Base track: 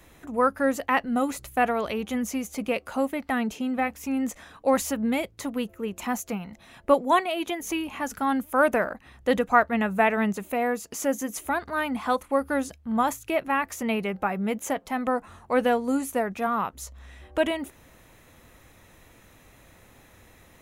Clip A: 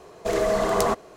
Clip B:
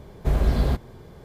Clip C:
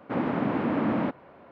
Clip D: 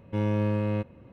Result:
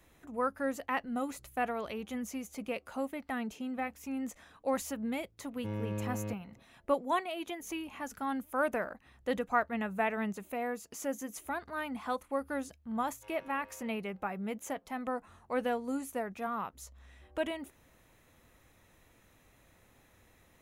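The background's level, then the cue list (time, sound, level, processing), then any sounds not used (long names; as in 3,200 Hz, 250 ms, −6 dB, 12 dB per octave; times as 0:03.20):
base track −10 dB
0:05.51: mix in D −10.5 dB
0:13.09: mix in D −17.5 dB + high-pass filter 600 Hz 24 dB per octave
not used: A, B, C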